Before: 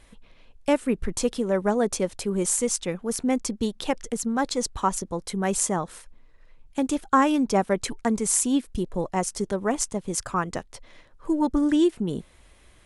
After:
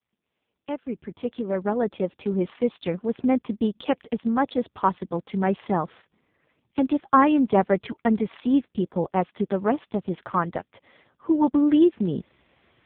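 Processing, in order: opening faded in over 2.67 s; 2.6–3.22 dynamic EQ 1900 Hz, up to -4 dB, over -56 dBFS, Q 4.7; gain +3 dB; AMR-NB 5.15 kbps 8000 Hz

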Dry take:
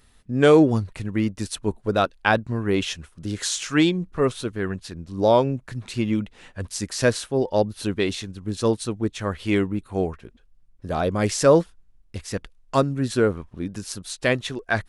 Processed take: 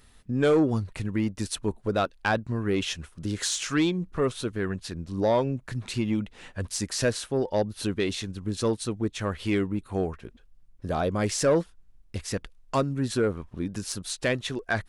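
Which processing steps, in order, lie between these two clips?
in parallel at +2.5 dB: compressor, threshold -28 dBFS, peak gain reduction 16.5 dB; on the sum: soft clip -7.5 dBFS, distortion -18 dB; gain -6.5 dB

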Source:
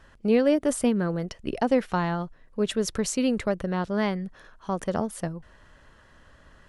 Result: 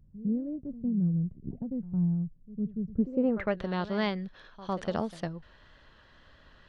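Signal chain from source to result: reverse echo 0.106 s -15.5 dB; low-pass sweep 160 Hz -> 4000 Hz, 2.9–3.6; wow and flutter 23 cents; gain -4 dB

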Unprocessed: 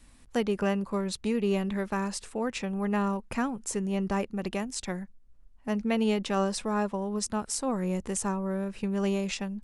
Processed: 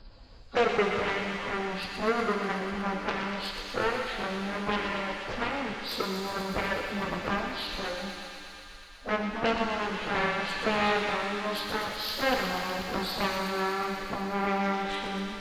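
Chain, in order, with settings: nonlinear frequency compression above 1100 Hz 1.5:1; graphic EQ 250/500/2000/4000 Hz -9/+6/-9/-5 dB; in parallel at -2.5 dB: compressor 12:1, threshold -36 dBFS, peak gain reduction 14.5 dB; on the sum: plain phase-vocoder stretch 1.6×; added harmonics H 7 -8 dB, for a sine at -18 dBFS; thin delay 0.122 s, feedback 84%, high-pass 1700 Hz, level -6.5 dB; shimmer reverb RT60 1.9 s, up +7 st, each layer -8 dB, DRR 3.5 dB

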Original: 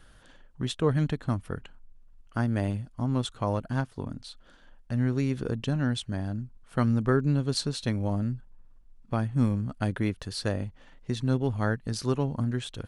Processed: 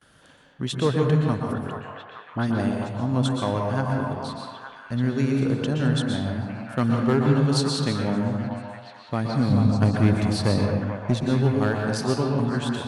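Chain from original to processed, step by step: HPF 110 Hz 12 dB/oct; gate with hold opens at -51 dBFS; 9.52–11.23 low shelf 340 Hz +10 dB; one-sided clip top -17.5 dBFS; 1.4–2.6 dispersion highs, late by 58 ms, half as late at 1800 Hz; delay with a stepping band-pass 0.433 s, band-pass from 820 Hz, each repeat 0.7 oct, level -3.5 dB; reverb RT60 1.2 s, pre-delay 0.114 s, DRR 1 dB; gain +3 dB

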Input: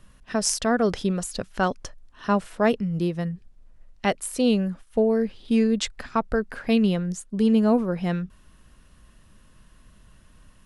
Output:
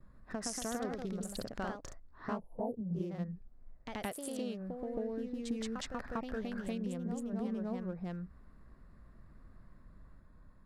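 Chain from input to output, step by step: Wiener smoothing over 15 samples; 2.39–2.96 Chebyshev band-stop 870–9700 Hz, order 5; gate with hold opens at -51 dBFS; 4.12–4.83 HPF 240 Hz 6 dB/oct; compressor, threshold -32 dBFS, peak gain reduction 15.5 dB; echoes that change speed 0.136 s, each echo +1 st, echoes 2; gain -5.5 dB

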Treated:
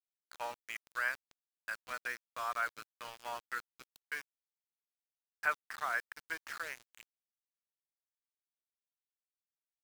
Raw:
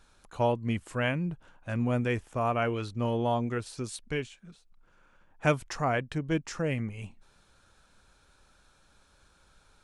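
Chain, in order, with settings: octaver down 1 oct, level -2 dB; ladder band-pass 1800 Hz, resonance 50%; treble ducked by the level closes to 1500 Hz, closed at -44 dBFS; sample gate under -51.5 dBFS; gain +9.5 dB

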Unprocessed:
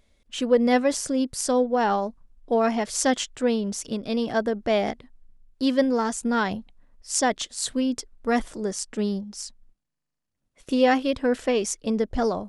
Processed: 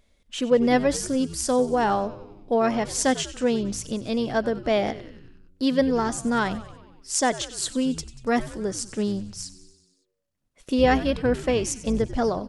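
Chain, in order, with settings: 10.78–12.09 octaver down 2 oct, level -5 dB; on a send: frequency-shifting echo 94 ms, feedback 63%, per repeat -97 Hz, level -16 dB

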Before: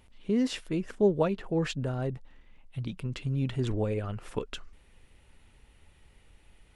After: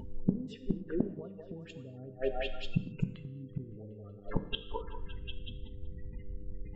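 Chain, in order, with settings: spectral gate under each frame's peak -15 dB strong; delay with a stepping band-pass 0.187 s, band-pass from 570 Hz, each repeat 0.7 oct, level -7 dB; compressor 2.5:1, threshold -44 dBFS, peak gain reduction 16.5 dB; flipped gate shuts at -36 dBFS, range -25 dB; bell 210 Hz +5.5 dB 2.1 oct; notch 4400 Hz, Q 14; non-linear reverb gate 0.28 s falling, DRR 9.5 dB; buzz 100 Hz, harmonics 5, -71 dBFS -1 dB/oct; gain +15.5 dB

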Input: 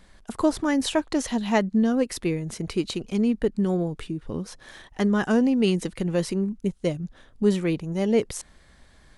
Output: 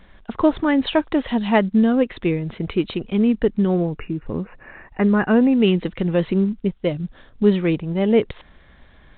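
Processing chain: 3.8–5.57 brick-wall FIR low-pass 2900 Hz; 6.26–6.91 bell 110 Hz +5 dB -> -4.5 dB 2.6 oct; gain +5 dB; µ-law 64 kbps 8000 Hz

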